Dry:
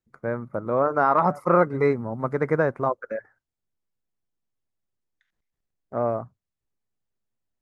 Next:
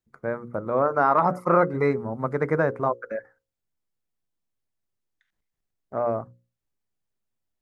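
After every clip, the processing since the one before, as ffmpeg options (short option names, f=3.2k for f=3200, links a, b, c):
-af "bandreject=f=60:t=h:w=6,bandreject=f=120:t=h:w=6,bandreject=f=180:t=h:w=6,bandreject=f=240:t=h:w=6,bandreject=f=300:t=h:w=6,bandreject=f=360:t=h:w=6,bandreject=f=420:t=h:w=6,bandreject=f=480:t=h:w=6,bandreject=f=540:t=h:w=6"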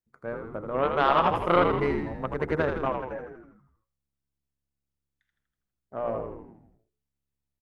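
-filter_complex "[0:a]aeval=exprs='0.398*(cos(1*acos(clip(val(0)/0.398,-1,1)))-cos(1*PI/2))+0.0708*(cos(3*acos(clip(val(0)/0.398,-1,1)))-cos(3*PI/2))+0.0141*(cos(4*acos(clip(val(0)/0.398,-1,1)))-cos(4*PI/2))':c=same,asplit=9[a][b][c][d][e][f][g][h][i];[b]adelay=81,afreqshift=-69,volume=-5dB[j];[c]adelay=162,afreqshift=-138,volume=-9.6dB[k];[d]adelay=243,afreqshift=-207,volume=-14.2dB[l];[e]adelay=324,afreqshift=-276,volume=-18.7dB[m];[f]adelay=405,afreqshift=-345,volume=-23.3dB[n];[g]adelay=486,afreqshift=-414,volume=-27.9dB[o];[h]adelay=567,afreqshift=-483,volume=-32.5dB[p];[i]adelay=648,afreqshift=-552,volume=-37.1dB[q];[a][j][k][l][m][n][o][p][q]amix=inputs=9:normalize=0"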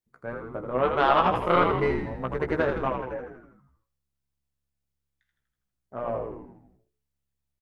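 -filter_complex "[0:a]asplit=2[a][b];[b]adelay=16,volume=-6dB[c];[a][c]amix=inputs=2:normalize=0"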